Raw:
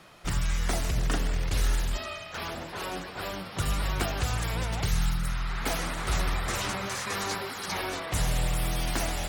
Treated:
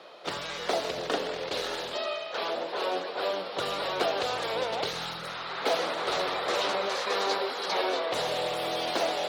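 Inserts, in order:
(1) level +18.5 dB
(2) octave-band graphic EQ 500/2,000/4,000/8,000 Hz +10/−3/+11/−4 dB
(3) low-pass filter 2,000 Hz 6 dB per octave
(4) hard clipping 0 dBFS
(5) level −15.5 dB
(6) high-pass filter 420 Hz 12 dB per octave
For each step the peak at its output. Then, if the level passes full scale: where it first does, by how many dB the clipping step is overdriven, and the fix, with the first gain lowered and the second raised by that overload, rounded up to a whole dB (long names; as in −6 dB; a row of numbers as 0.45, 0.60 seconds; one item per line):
+4.0, +7.0, +5.5, 0.0, −15.5, −11.5 dBFS
step 1, 5.5 dB
step 1 +12.5 dB, step 5 −9.5 dB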